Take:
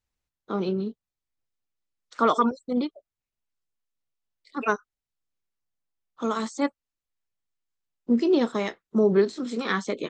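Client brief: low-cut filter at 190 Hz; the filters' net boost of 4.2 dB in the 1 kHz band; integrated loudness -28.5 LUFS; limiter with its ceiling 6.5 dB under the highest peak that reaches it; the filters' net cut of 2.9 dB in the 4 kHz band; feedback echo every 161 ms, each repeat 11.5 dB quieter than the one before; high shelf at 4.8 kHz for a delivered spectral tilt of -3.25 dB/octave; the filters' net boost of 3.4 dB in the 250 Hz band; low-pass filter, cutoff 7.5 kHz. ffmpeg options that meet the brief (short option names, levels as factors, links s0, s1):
-af "highpass=190,lowpass=7500,equalizer=f=250:t=o:g=5.5,equalizer=f=1000:t=o:g=5,equalizer=f=4000:t=o:g=-5,highshelf=f=4800:g=3.5,alimiter=limit=0.251:level=0:latency=1,aecho=1:1:161|322|483:0.266|0.0718|0.0194,volume=0.631"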